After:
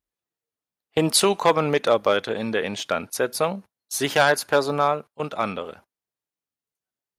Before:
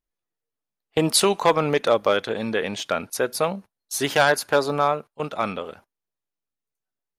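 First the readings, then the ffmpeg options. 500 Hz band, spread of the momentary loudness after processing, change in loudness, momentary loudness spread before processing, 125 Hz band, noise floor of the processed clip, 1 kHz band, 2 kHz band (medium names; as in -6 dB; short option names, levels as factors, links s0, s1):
0.0 dB, 10 LU, 0.0 dB, 10 LU, 0.0 dB, under -85 dBFS, 0.0 dB, 0.0 dB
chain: -af "highpass=45"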